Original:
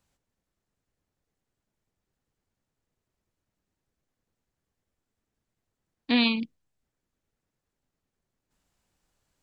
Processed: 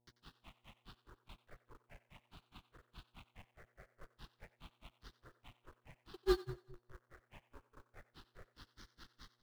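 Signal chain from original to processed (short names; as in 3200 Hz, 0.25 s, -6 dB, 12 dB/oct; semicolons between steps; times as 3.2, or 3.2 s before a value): delta modulation 16 kbps, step -39.5 dBFS; frequency shift -27 Hz; fixed phaser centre 1300 Hz, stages 6; grains 0.131 s, grains 4.8/s, pitch spread up and down by 12 st; in parallel at -7.5 dB: companded quantiser 4-bit; on the sum: buzz 120 Hz, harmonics 8, -69 dBFS -5 dB/oct; on a send: split-band echo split 340 Hz, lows 0.209 s, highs 91 ms, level -11.5 dB; on the sum: upward expander 1.5:1, over -56 dBFS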